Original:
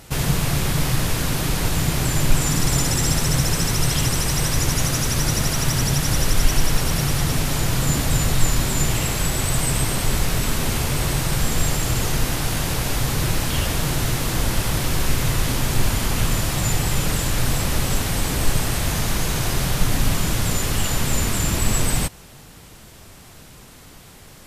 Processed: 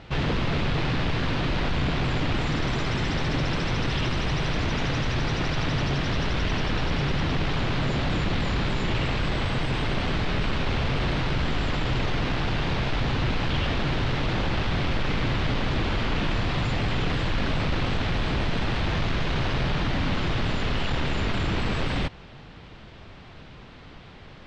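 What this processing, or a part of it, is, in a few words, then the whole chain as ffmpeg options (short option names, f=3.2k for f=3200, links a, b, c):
synthesiser wavefolder: -af "aeval=exprs='0.119*(abs(mod(val(0)/0.119+3,4)-2)-1)':c=same,lowpass=f=3.8k:w=0.5412,lowpass=f=3.8k:w=1.3066"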